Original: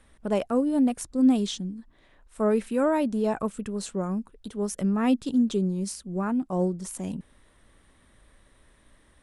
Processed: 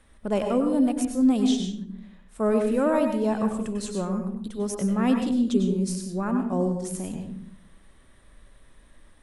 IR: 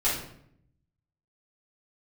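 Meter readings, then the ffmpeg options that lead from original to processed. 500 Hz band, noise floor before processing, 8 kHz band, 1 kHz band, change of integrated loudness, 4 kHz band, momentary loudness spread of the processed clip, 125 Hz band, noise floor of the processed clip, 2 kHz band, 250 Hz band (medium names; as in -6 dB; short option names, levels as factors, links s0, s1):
+1.5 dB, -61 dBFS, +1.0 dB, +1.5 dB, +1.5 dB, +1.5 dB, 11 LU, +2.0 dB, -55 dBFS, +1.5 dB, +1.5 dB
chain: -filter_complex "[0:a]asplit=2[s0][s1];[1:a]atrim=start_sample=2205,asetrate=61740,aresample=44100,adelay=92[s2];[s1][s2]afir=irnorm=-1:irlink=0,volume=0.251[s3];[s0][s3]amix=inputs=2:normalize=0"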